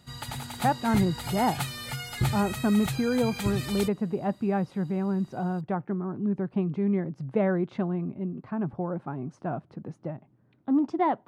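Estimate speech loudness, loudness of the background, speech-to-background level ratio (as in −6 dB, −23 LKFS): −29.0 LKFS, −33.5 LKFS, 4.5 dB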